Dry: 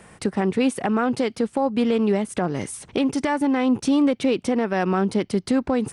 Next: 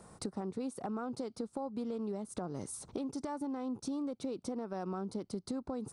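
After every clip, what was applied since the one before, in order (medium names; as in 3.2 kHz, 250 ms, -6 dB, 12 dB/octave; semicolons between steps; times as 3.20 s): high-order bell 2.3 kHz -12.5 dB 1.2 oct; compression 4:1, threshold -30 dBFS, peak gain reduction 12 dB; trim -7 dB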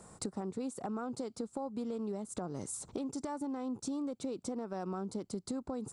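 peaking EQ 7.4 kHz +11.5 dB 0.23 oct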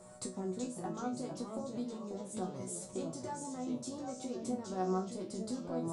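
chord resonator B2 fifth, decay 0.26 s; whistle 610 Hz -66 dBFS; ever faster or slower copies 349 ms, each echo -2 st, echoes 3, each echo -6 dB; trim +10.5 dB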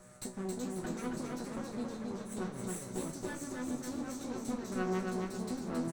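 comb filter that takes the minimum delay 0.51 ms; feedback delay 271 ms, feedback 37%, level -3.5 dB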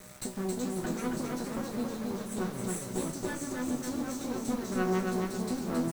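bit crusher 9-bit; trim +5 dB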